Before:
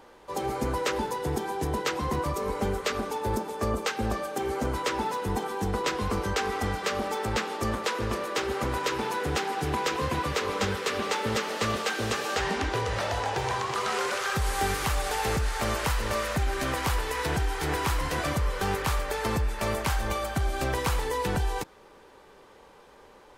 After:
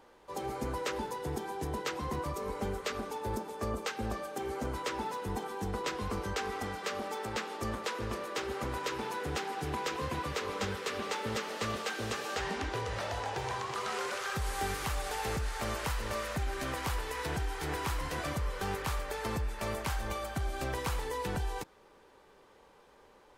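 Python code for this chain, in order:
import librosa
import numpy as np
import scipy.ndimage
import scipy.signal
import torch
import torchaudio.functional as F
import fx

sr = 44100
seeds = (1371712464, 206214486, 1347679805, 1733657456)

y = fx.highpass(x, sr, hz=150.0, slope=6, at=(6.63, 7.55))
y = F.gain(torch.from_numpy(y), -7.0).numpy()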